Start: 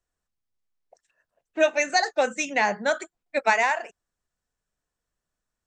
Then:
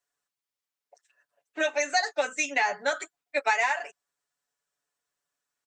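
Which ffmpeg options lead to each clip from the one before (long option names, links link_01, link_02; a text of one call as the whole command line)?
ffmpeg -i in.wav -af "highpass=frequency=820:poles=1,aecho=1:1:7:0.88,acompressor=threshold=-24dB:ratio=2" out.wav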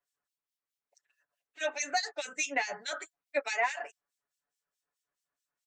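ffmpeg -i in.wav -filter_complex "[0:a]acrossover=split=3200[link_01][link_02];[link_02]volume=22.5dB,asoftclip=hard,volume=-22.5dB[link_03];[link_01][link_03]amix=inputs=2:normalize=0,acrossover=split=2300[link_04][link_05];[link_04]aeval=exprs='val(0)*(1-1/2+1/2*cos(2*PI*4.7*n/s))':channel_layout=same[link_06];[link_05]aeval=exprs='val(0)*(1-1/2-1/2*cos(2*PI*4.7*n/s))':channel_layout=same[link_07];[link_06][link_07]amix=inputs=2:normalize=0" out.wav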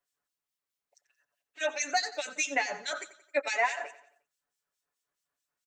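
ffmpeg -i in.wav -af "aecho=1:1:89|178|267|356:0.158|0.0745|0.035|0.0165,volume=2dB" out.wav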